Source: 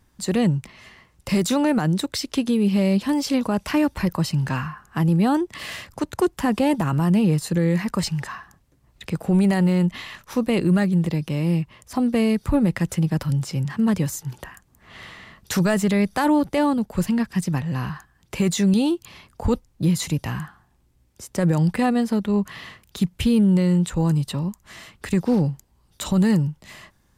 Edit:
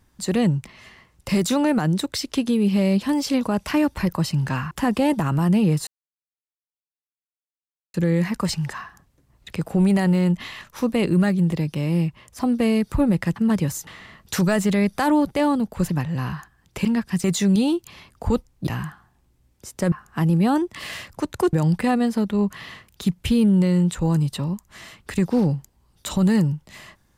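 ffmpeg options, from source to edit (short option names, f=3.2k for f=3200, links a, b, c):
-filter_complex "[0:a]asplit=11[a][b][c][d][e][f][g][h][i][j][k];[a]atrim=end=4.712[l];[b]atrim=start=6.318:end=7.48,asetpts=PTS-STARTPTS,afade=t=out:st=1.158:d=0.004:c=hsin,apad=pad_dur=2.07[m];[c]atrim=start=7.48:end=12.902,asetpts=PTS-STARTPTS,afade=t=in:d=0.004:c=hsin[n];[d]atrim=start=13.738:end=14.252[o];[e]atrim=start=15.048:end=17.082[p];[f]atrim=start=17.468:end=18.422[q];[g]atrim=start=17.078:end=17.472[r];[h]atrim=start=18.418:end=19.852[s];[i]atrim=start=20.228:end=21.482[t];[j]atrim=start=4.708:end=6.322[u];[k]atrim=start=21.478[v];[m][n]concat=n=2:v=0:a=1[w];[l][w]acrossfade=d=0.004:c1=hsin:c2=hsin[x];[x][o]acrossfade=d=0.004:c1=hsin:c2=hsin[y];[y][p]acrossfade=d=0.004:c1=hsin:c2=hsin[z];[z][q]acrossfade=d=0.004:c1=hsin:c2=hsin[aa];[aa][r]acrossfade=d=0.004:c1=hsin:c2=hsin[ab];[ab][s]acrossfade=d=0.004:c1=hsin:c2=hsin[ac];[ac][t]acrossfade=d=0.004:c1=hsin:c2=hsin[ad];[ad][u]acrossfade=d=0.004:c1=hsin:c2=hsin[ae];[ae][v]acrossfade=d=0.004:c1=hsin:c2=hsin"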